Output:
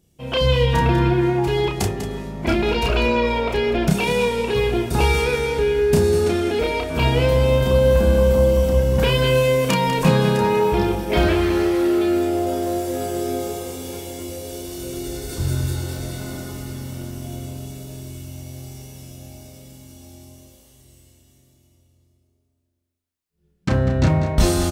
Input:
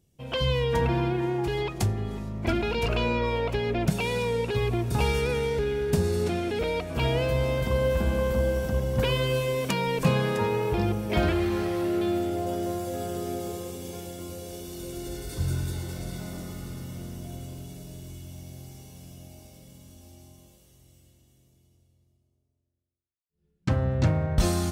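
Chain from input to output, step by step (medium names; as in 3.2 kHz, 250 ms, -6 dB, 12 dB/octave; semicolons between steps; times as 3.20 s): peaking EQ 110 Hz -14 dB 0.24 oct; doubling 31 ms -4 dB; on a send: delay 196 ms -11 dB; on the sum: trim +6 dB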